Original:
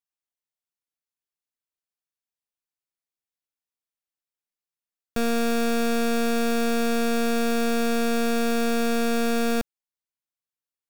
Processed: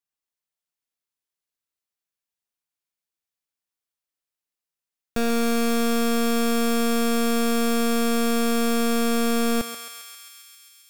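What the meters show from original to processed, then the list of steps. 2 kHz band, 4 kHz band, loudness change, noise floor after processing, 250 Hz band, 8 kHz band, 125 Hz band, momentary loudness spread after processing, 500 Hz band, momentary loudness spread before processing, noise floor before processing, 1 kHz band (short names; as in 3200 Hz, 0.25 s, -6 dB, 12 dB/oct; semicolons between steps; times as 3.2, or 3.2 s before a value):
-0.5 dB, +3.5 dB, +1.5 dB, under -85 dBFS, +2.0 dB, +4.5 dB, n/a, 11 LU, +0.5 dB, 2 LU, under -85 dBFS, +1.0 dB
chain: thinning echo 0.134 s, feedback 81%, high-pass 980 Hz, level -6 dB; gain +1 dB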